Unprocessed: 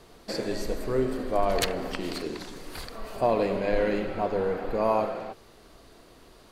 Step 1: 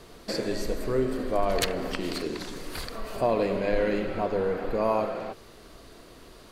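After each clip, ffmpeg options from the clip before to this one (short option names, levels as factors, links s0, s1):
-filter_complex "[0:a]equalizer=f=810:t=o:w=0.4:g=-3.5,asplit=2[s0][s1];[s1]acompressor=threshold=0.0178:ratio=6,volume=0.891[s2];[s0][s2]amix=inputs=2:normalize=0,volume=0.841"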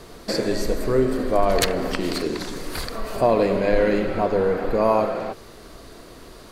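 -af "equalizer=f=2900:t=o:w=0.65:g=-3,volume=2.11"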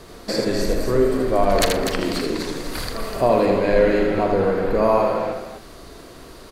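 -filter_complex "[0:a]asplit=2[s0][s1];[s1]adelay=41,volume=0.224[s2];[s0][s2]amix=inputs=2:normalize=0,asplit=2[s3][s4];[s4]aecho=0:1:80|247:0.562|0.422[s5];[s3][s5]amix=inputs=2:normalize=0"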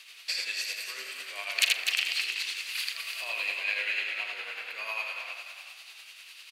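-filter_complex "[0:a]highpass=f=2600:t=q:w=5.1,asplit=4[s0][s1][s2][s3];[s1]adelay=351,afreqshift=62,volume=0.316[s4];[s2]adelay=702,afreqshift=124,volume=0.0977[s5];[s3]adelay=1053,afreqshift=186,volume=0.0305[s6];[s0][s4][s5][s6]amix=inputs=4:normalize=0,tremolo=f=10:d=0.42,volume=0.668"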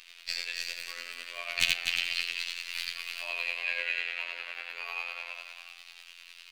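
-filter_complex "[0:a]aeval=exprs='0.447*(cos(1*acos(clip(val(0)/0.447,-1,1)))-cos(1*PI/2))+0.0224*(cos(2*acos(clip(val(0)/0.447,-1,1)))-cos(2*PI/2))':c=same,acrossover=split=480|2400|6600[s0][s1][s2][s3];[s3]aeval=exprs='max(val(0),0)':c=same[s4];[s0][s1][s2][s4]amix=inputs=4:normalize=0,afftfilt=real='hypot(re,im)*cos(PI*b)':imag='0':win_size=2048:overlap=0.75,volume=1.19"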